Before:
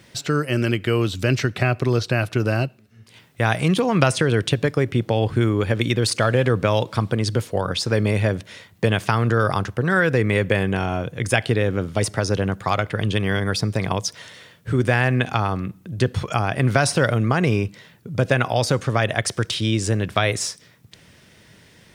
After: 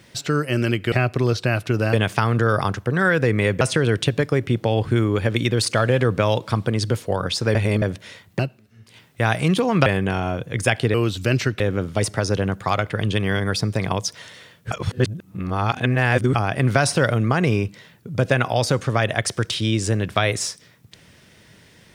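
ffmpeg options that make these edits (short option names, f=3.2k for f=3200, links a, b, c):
-filter_complex "[0:a]asplit=12[a][b][c][d][e][f][g][h][i][j][k][l];[a]atrim=end=0.922[m];[b]atrim=start=1.578:end=2.592[n];[c]atrim=start=8.838:end=10.522[o];[d]atrim=start=4.058:end=8.002[p];[e]atrim=start=7.998:end=8.272,asetpts=PTS-STARTPTS,areverse[q];[f]atrim=start=8.268:end=8.842[r];[g]atrim=start=2.588:end=4.062[s];[h]atrim=start=10.518:end=11.602[t];[i]atrim=start=0.918:end=1.582[u];[j]atrim=start=11.598:end=14.712[v];[k]atrim=start=14.708:end=16.352,asetpts=PTS-STARTPTS,areverse[w];[l]atrim=start=16.348[x];[m][n]acrossfade=d=0.004:c1=hsin:c2=hsin[y];[y][o]acrossfade=d=0.004:c1=hsin:c2=hsin[z];[z][p]acrossfade=d=0.004:c1=hsin:c2=hsin[aa];[aa][q]acrossfade=d=0.004:c1=hsin:c2=hsin[ab];[ab][r]acrossfade=d=0.004:c1=hsin:c2=hsin[ac];[ac][s]acrossfade=d=0.004:c1=hsin:c2=hsin[ad];[ad][t]acrossfade=d=0.004:c1=hsin:c2=hsin[ae];[ae][u]acrossfade=d=0.004:c1=hsin:c2=hsin[af];[af][v]acrossfade=d=0.004:c1=hsin:c2=hsin[ag];[ag][w]acrossfade=d=0.004:c1=hsin:c2=hsin[ah];[ah][x]acrossfade=d=0.004:c1=hsin:c2=hsin"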